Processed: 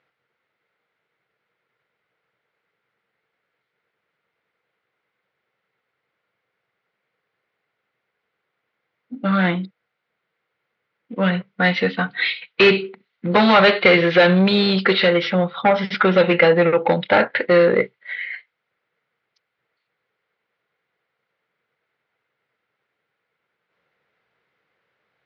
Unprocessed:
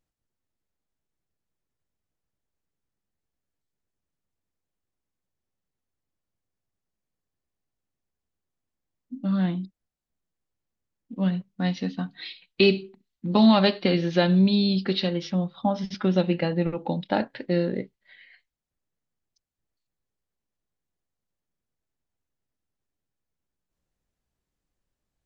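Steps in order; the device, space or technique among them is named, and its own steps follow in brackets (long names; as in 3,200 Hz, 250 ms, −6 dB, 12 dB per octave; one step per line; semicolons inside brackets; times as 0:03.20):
overdrive pedal into a guitar cabinet (mid-hump overdrive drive 23 dB, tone 3,900 Hz, clips at −6.5 dBFS; loudspeaker in its box 110–3,900 Hz, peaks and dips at 130 Hz +6 dB, 270 Hz −6 dB, 470 Hz +8 dB, 1,400 Hz +8 dB, 2,100 Hz +9 dB)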